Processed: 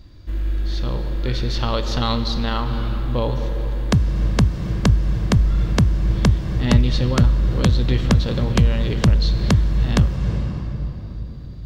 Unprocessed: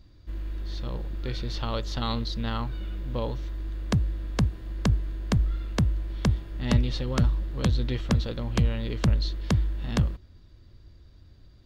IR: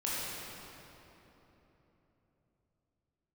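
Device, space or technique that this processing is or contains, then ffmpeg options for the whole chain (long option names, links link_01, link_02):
ducked reverb: -filter_complex "[0:a]asplit=3[link_01][link_02][link_03];[1:a]atrim=start_sample=2205[link_04];[link_02][link_04]afir=irnorm=-1:irlink=0[link_05];[link_03]apad=whole_len=514035[link_06];[link_05][link_06]sidechaincompress=threshold=-29dB:ratio=8:attack=16:release=324,volume=-8dB[link_07];[link_01][link_07]amix=inputs=2:normalize=0,volume=6.5dB"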